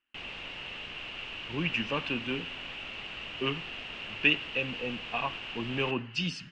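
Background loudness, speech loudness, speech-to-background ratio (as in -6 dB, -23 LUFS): -38.5 LUFS, -32.0 LUFS, 6.5 dB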